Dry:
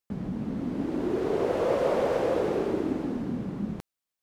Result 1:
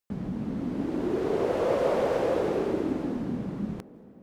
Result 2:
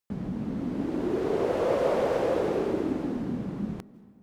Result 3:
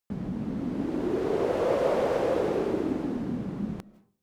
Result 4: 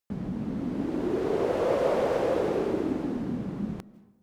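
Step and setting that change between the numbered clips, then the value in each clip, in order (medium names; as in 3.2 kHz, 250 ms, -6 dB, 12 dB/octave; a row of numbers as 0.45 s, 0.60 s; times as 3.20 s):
algorithmic reverb, RT60: 5.1 s, 2.2 s, 0.47 s, 1 s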